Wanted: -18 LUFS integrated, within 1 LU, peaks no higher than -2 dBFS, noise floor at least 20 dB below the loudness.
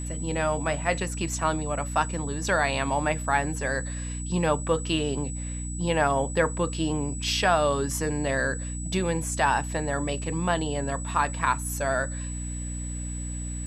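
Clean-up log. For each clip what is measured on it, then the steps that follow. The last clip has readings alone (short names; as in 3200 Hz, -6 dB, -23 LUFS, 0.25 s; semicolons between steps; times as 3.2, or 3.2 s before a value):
hum 60 Hz; harmonics up to 300 Hz; hum level -31 dBFS; steady tone 7900 Hz; tone level -38 dBFS; loudness -27.0 LUFS; peak -8.5 dBFS; loudness target -18.0 LUFS
-> de-hum 60 Hz, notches 5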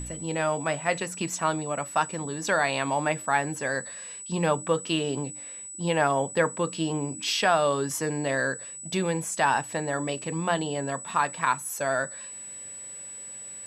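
hum none; steady tone 7900 Hz; tone level -38 dBFS
-> notch 7900 Hz, Q 30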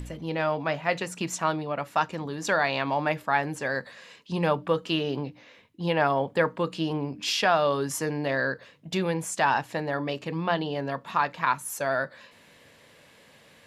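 steady tone none; loudness -27.5 LUFS; peak -9.0 dBFS; loudness target -18.0 LUFS
-> gain +9.5 dB; limiter -2 dBFS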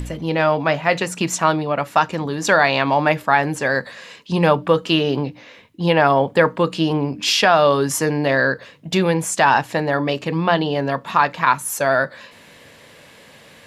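loudness -18.5 LUFS; peak -2.0 dBFS; noise floor -46 dBFS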